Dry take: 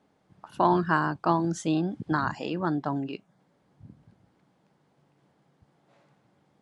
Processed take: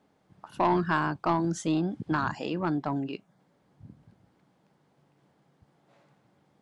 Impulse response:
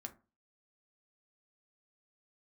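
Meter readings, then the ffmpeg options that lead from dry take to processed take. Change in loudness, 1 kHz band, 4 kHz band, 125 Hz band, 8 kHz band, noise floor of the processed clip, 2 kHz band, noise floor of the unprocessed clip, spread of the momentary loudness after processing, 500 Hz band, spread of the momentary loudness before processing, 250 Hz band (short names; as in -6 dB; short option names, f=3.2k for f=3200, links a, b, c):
-1.5 dB, -2.0 dB, -0.5 dB, -1.5 dB, 0.0 dB, -69 dBFS, -1.5 dB, -69 dBFS, 8 LU, -1.5 dB, 8 LU, -1.0 dB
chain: -af "asoftclip=type=tanh:threshold=-16dB"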